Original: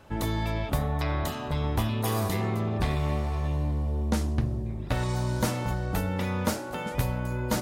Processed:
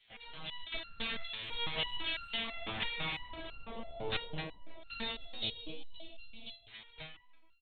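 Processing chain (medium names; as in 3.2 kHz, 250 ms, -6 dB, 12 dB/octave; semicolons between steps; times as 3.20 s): fade out at the end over 2.01 s; spectral gate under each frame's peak -20 dB weak; FFT filter 180 Hz 0 dB, 400 Hz -8 dB, 1.4 kHz -13 dB, 3.1 kHz 0 dB; level rider gain up to 7 dB; 5.12–6.69 s: Butterworth band-stop 1.5 kHz, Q 0.53; LPC vocoder at 8 kHz pitch kept; speakerphone echo 310 ms, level -19 dB; resonator arpeggio 6 Hz 110–1400 Hz; trim +15.5 dB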